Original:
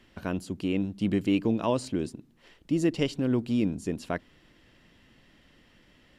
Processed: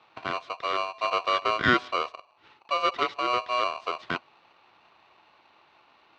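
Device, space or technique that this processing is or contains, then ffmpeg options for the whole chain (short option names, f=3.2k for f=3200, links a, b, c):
ring modulator pedal into a guitar cabinet: -filter_complex "[0:a]asettb=1/sr,asplit=3[a][b][c];[a]atrim=end=1.594[d];[b]atrim=start=1.59:end=2.03,asetpts=PTS-STARTPTS,afade=t=in:d=0.004:c=qsin,afade=t=out:st=0.436:d=0.004:c=qsin,equalizer=f=1.1k:w=0.44:g=6[e];[c]atrim=start=2.026[f];[d][e]acrossfade=d=0.004:c1=hsin:c2=qsin[g];[g][f]acrossfade=d=0.004:c1=qsin:c2=hsin,aeval=exprs='val(0)*sgn(sin(2*PI*860*n/s))':c=same,highpass=75,equalizer=f=190:t=q:w=4:g=-4,equalizer=f=350:t=q:w=4:g=4,equalizer=f=570:t=q:w=4:g=-6,equalizer=f=1.4k:t=q:w=4:g=4,lowpass=f=4k:w=0.5412,lowpass=f=4k:w=1.3066"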